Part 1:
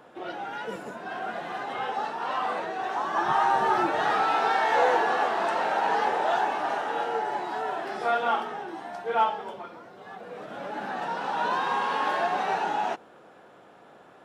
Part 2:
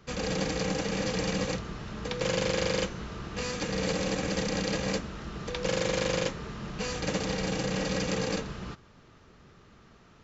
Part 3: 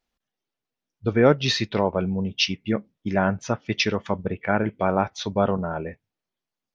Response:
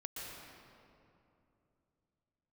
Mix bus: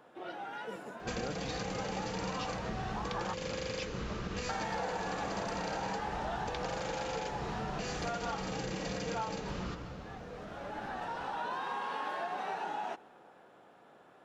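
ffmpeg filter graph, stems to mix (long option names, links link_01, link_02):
-filter_complex "[0:a]volume=-7.5dB,asplit=3[link_01][link_02][link_03];[link_01]atrim=end=3.34,asetpts=PTS-STARTPTS,afade=type=out:start_time=3.336:duration=0.004:curve=hsin[link_04];[link_02]atrim=start=3.34:end=4.49,asetpts=PTS-STARTPTS,volume=0[link_05];[link_03]atrim=start=4.49,asetpts=PTS-STARTPTS,afade=type=in:duration=0.004:curve=hsin[link_06];[link_04][link_05][link_06]concat=n=3:v=0:a=1,asplit=2[link_07][link_08];[link_08]volume=-21.5dB[link_09];[1:a]acompressor=threshold=-35dB:ratio=6,adelay=1000,volume=0.5dB,asplit=2[link_10][link_11];[link_11]volume=-4dB[link_12];[2:a]volume=-19dB[link_13];[3:a]atrim=start_sample=2205[link_14];[link_09][link_12]amix=inputs=2:normalize=0[link_15];[link_15][link_14]afir=irnorm=-1:irlink=0[link_16];[link_07][link_10][link_13][link_16]amix=inputs=4:normalize=0,acompressor=threshold=-34dB:ratio=4"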